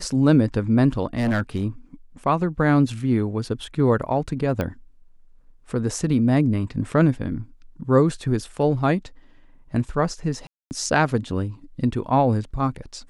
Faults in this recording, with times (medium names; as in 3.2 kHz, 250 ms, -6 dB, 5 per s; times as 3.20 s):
1.17–1.65 s: clipped -18 dBFS
4.61 s: pop -13 dBFS
10.47–10.71 s: dropout 239 ms